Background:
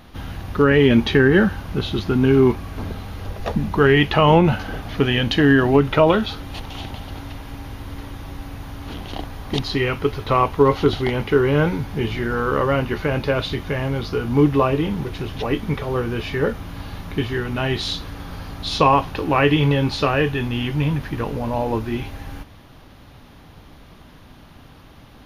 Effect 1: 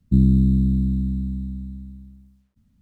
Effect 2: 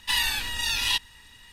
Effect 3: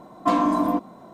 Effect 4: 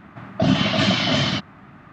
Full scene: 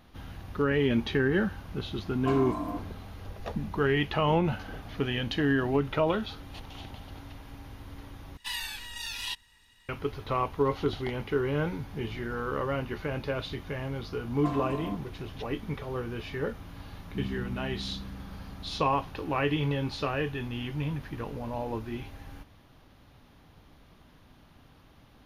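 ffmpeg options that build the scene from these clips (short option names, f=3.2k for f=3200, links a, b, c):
-filter_complex "[3:a]asplit=2[a][b];[0:a]volume=-11.5dB[c];[1:a]lowshelf=f=110:g=-9[d];[c]asplit=2[e][f];[e]atrim=end=8.374[g];[2:a]atrim=end=1.52,asetpts=PTS-STARTPTS,volume=-10.5dB[h];[f]atrim=start=9.886[i];[a]atrim=end=1.13,asetpts=PTS-STARTPTS,volume=-12.5dB,afade=t=in:d=0.004:c=hsin,afade=t=out:st=1.126:d=0.004:c=hsin,adelay=2000[j];[b]atrim=end=1.13,asetpts=PTS-STARTPTS,volume=-15dB,afade=t=in:d=0.004:c=hsin,afade=t=out:st=1.126:d=0.004:c=hsin,adelay=14180[k];[d]atrim=end=2.81,asetpts=PTS-STARTPTS,volume=-16.5dB,afade=t=in:d=0.004:c=hsin,afade=t=out:st=2.806:d=0.004:c=hsin,adelay=17030[l];[g][h]acrossfade=d=0.004:c1=hsin:c2=hsin[m];[m][i]acrossfade=d=0.004:c1=hsin:c2=hsin[n];[n][j][k][l]amix=inputs=4:normalize=0"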